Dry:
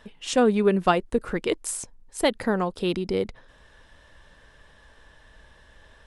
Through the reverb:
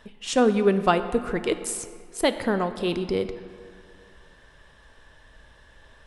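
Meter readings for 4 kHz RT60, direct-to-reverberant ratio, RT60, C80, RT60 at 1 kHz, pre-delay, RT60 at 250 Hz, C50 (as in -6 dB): 1.4 s, 10.0 dB, 2.3 s, 12.5 dB, 2.2 s, 3 ms, 2.1 s, 11.5 dB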